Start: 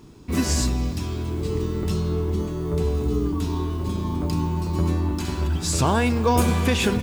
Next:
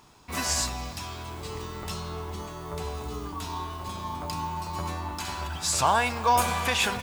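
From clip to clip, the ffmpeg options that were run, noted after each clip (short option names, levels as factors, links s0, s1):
-af "lowshelf=f=520:t=q:w=1.5:g=-12.5"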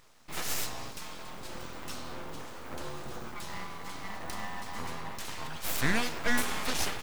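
-af "aeval=exprs='abs(val(0))':c=same,volume=0.708"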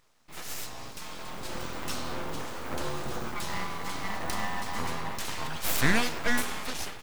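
-af "dynaudnorm=f=310:g=7:m=4.47,volume=0.473"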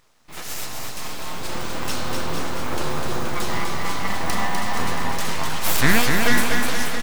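-af "aecho=1:1:250|475|677.5|859.8|1024:0.631|0.398|0.251|0.158|0.1,volume=2.11"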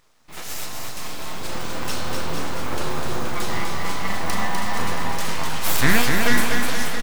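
-filter_complex "[0:a]asplit=2[s0][s1];[s1]adelay=38,volume=0.282[s2];[s0][s2]amix=inputs=2:normalize=0,volume=0.891"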